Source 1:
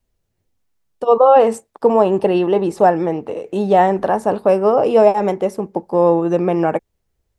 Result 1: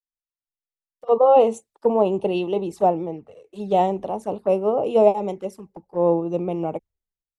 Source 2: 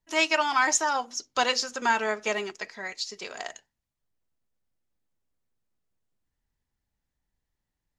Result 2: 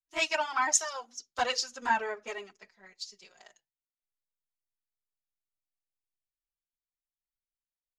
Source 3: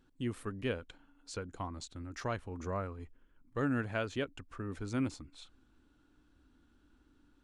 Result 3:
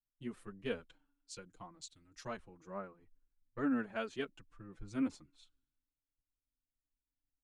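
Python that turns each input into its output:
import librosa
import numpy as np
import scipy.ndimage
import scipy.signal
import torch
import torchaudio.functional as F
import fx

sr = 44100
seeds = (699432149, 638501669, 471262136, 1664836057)

y = fx.env_flanger(x, sr, rest_ms=7.4, full_db=-14.0)
y = fx.band_widen(y, sr, depth_pct=100)
y = y * 10.0 ** (-5.0 / 20.0)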